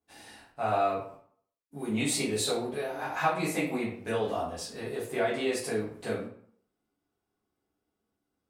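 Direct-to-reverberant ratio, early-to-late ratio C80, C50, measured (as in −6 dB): −11.0 dB, 9.0 dB, 4.5 dB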